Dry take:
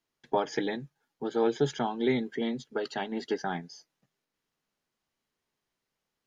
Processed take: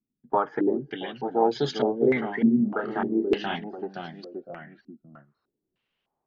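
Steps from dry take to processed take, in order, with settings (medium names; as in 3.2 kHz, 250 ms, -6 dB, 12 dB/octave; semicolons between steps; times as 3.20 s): ever faster or slower copies 317 ms, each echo -1 st, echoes 3, each echo -6 dB; 2.57–3.56 s: doubling 30 ms -5.5 dB; step-sequenced low-pass 3.3 Hz 230–4500 Hz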